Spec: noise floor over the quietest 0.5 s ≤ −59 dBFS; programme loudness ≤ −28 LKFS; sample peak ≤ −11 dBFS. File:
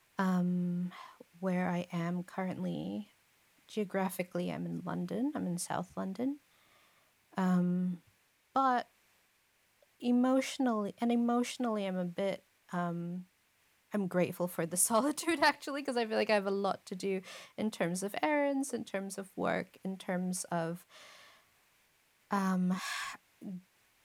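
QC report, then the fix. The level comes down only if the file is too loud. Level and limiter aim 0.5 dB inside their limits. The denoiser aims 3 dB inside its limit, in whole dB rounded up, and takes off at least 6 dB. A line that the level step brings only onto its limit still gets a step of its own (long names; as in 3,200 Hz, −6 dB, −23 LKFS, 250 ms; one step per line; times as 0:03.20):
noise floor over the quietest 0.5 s −72 dBFS: in spec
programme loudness −34.5 LKFS: in spec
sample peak −14.5 dBFS: in spec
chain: no processing needed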